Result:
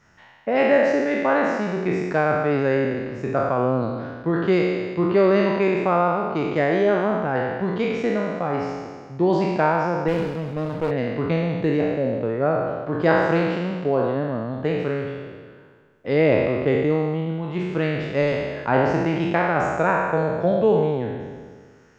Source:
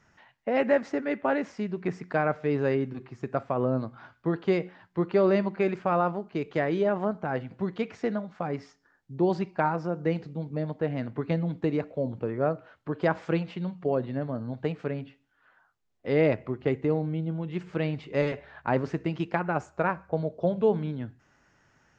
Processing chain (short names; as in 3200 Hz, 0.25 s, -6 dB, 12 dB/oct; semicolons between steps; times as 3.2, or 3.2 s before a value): spectral trails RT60 1.67 s; 10.08–10.91 running maximum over 17 samples; gain +3.5 dB